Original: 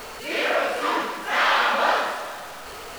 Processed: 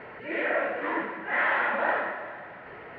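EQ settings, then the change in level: cabinet simulation 100–2300 Hz, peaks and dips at 120 Hz +6 dB, 180 Hz +6 dB, 340 Hz +6 dB, 590 Hz +3 dB, 1.2 kHz +3 dB, 1.9 kHz +9 dB; bass shelf 160 Hz +6 dB; band-stop 1.2 kHz, Q 6.6; -7.5 dB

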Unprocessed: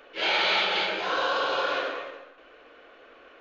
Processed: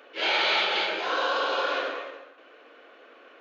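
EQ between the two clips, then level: brick-wall FIR high-pass 200 Hz; 0.0 dB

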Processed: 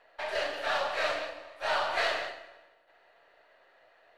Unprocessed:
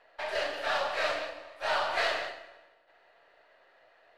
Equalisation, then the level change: band-stop 5 kHz, Q 26; 0.0 dB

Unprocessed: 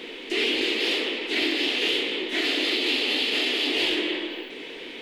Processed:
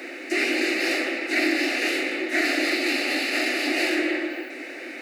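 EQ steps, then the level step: high-pass 300 Hz 24 dB/octave; static phaser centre 660 Hz, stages 8; +8.0 dB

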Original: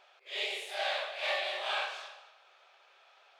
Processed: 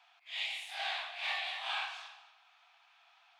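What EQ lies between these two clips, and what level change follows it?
rippled Chebyshev high-pass 680 Hz, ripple 3 dB; -1.5 dB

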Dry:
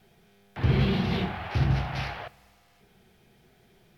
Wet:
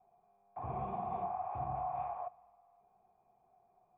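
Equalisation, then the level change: cascade formant filter a; +5.5 dB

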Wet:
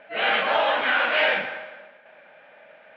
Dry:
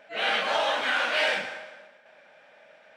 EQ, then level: low-pass 3.1 kHz 24 dB/octave; +4.5 dB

